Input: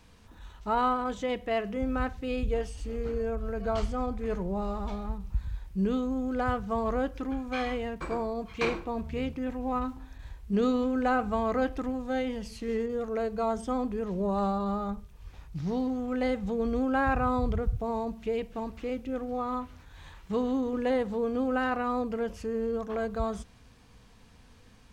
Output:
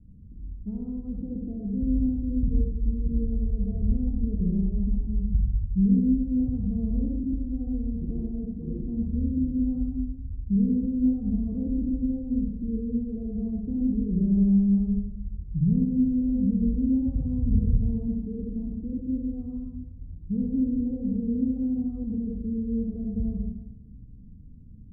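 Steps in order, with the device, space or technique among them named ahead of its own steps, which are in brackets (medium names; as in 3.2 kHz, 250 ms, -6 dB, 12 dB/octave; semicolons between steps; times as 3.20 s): club heard from the street (peak limiter -22.5 dBFS, peak gain reduction 6.5 dB; low-pass 240 Hz 24 dB/octave; reverberation RT60 0.90 s, pre-delay 44 ms, DRR -1 dB); trim +7.5 dB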